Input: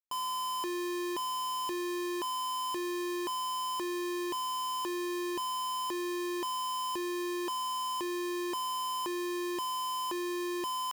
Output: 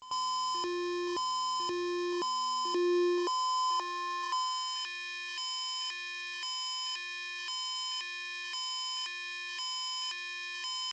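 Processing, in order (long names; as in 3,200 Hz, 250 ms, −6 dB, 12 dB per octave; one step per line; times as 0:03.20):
parametric band 81 Hz +2.5 dB 0.81 octaves
on a send: backwards echo 93 ms −13.5 dB
on the sum: high-pass filter sweep 63 Hz → 2,100 Hz, 0:01.24–0:04.89
dynamic equaliser 5,200 Hz, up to +8 dB, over −59 dBFS, Q 2.8
G.722 64 kbit/s 16,000 Hz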